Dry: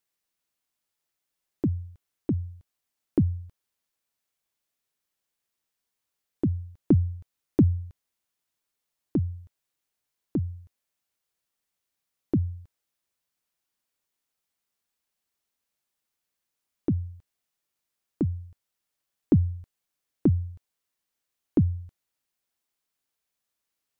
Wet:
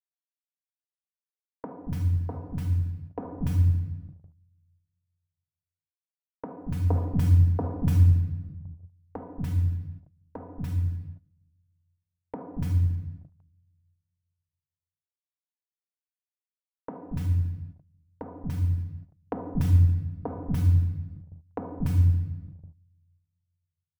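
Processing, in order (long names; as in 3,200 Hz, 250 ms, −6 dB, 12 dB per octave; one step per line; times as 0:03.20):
mu-law and A-law mismatch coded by A
low-shelf EQ 410 Hz +2 dB
comb filter 4.1 ms, depth 92%
three-band delay without the direct sound mids, lows, highs 230/290 ms, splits 270/1,300 Hz
rectangular room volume 910 cubic metres, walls mixed, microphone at 1.6 metres
noise gate −38 dBFS, range −17 dB
drawn EQ curve 150 Hz 0 dB, 230 Hz −20 dB, 870 Hz +9 dB, 2,200 Hz +4 dB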